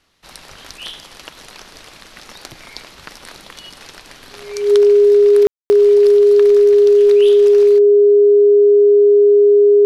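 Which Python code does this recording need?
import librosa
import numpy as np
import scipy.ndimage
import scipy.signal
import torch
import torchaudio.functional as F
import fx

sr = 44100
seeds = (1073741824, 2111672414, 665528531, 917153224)

y = fx.notch(x, sr, hz=410.0, q=30.0)
y = fx.fix_ambience(y, sr, seeds[0], print_start_s=0.0, print_end_s=0.5, start_s=5.47, end_s=5.7)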